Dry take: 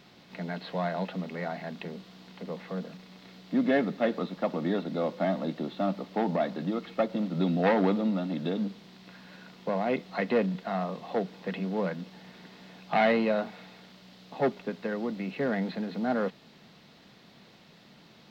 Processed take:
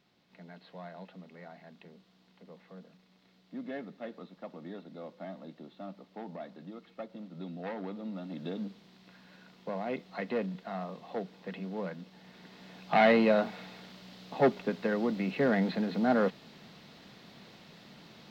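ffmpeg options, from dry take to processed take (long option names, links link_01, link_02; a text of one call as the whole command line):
ffmpeg -i in.wav -af "volume=2dB,afade=type=in:start_time=7.91:duration=0.59:silence=0.398107,afade=type=in:start_time=12.11:duration=1.16:silence=0.354813" out.wav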